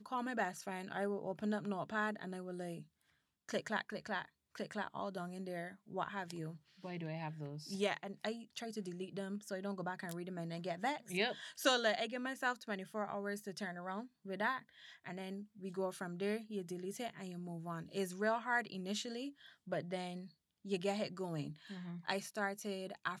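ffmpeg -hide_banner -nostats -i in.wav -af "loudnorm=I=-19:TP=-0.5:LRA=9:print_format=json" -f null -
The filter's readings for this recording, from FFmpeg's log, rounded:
"input_i" : "-41.3",
"input_tp" : "-17.4",
"input_lra" : "5.3",
"input_thresh" : "-51.5",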